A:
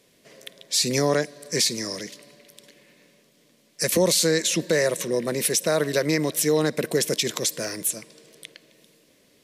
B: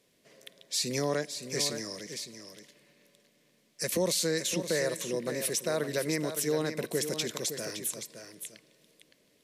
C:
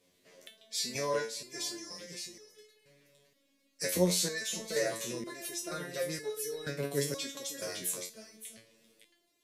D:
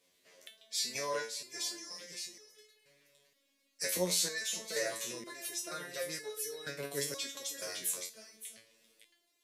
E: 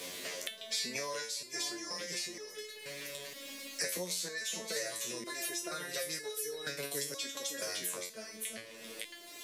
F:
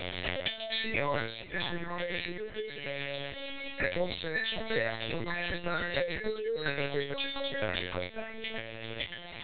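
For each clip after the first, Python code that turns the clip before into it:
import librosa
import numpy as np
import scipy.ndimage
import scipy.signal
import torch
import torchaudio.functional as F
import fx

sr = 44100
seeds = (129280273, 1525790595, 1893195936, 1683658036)

y1 = x + 10.0 ** (-9.0 / 20.0) * np.pad(x, (int(564 * sr / 1000.0), 0))[:len(x)]
y1 = y1 * 10.0 ** (-8.5 / 20.0)
y2 = fx.resonator_held(y1, sr, hz=2.1, low_hz=90.0, high_hz=430.0)
y2 = y2 * 10.0 ** (8.5 / 20.0)
y3 = fx.low_shelf(y2, sr, hz=450.0, db=-11.5)
y4 = fx.band_squash(y3, sr, depth_pct=100)
y5 = fx.lpc_vocoder(y4, sr, seeds[0], excitation='pitch_kept', order=10)
y5 = y5 * 10.0 ** (9.0 / 20.0)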